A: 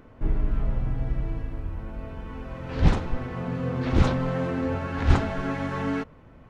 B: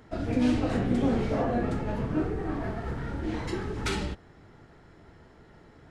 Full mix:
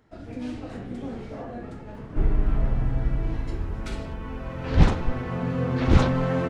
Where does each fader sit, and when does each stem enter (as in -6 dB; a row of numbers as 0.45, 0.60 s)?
+2.5, -9.0 dB; 1.95, 0.00 s